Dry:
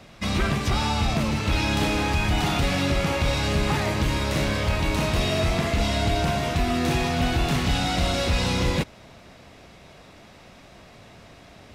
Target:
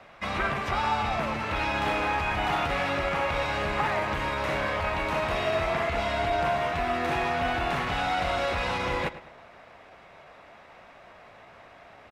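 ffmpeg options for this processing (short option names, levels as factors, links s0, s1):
-filter_complex "[0:a]asplit=2[s0][s1];[s1]adelay=100,lowpass=f=4800:p=1,volume=0.188,asplit=2[s2][s3];[s3]adelay=100,lowpass=f=4800:p=1,volume=0.36,asplit=2[s4][s5];[s5]adelay=100,lowpass=f=4800:p=1,volume=0.36[s6];[s0][s2][s4][s6]amix=inputs=4:normalize=0,atempo=0.97,acrossover=split=530 2400:gain=0.178 1 0.141[s7][s8][s9];[s7][s8][s9]amix=inputs=3:normalize=0,volume=1.41"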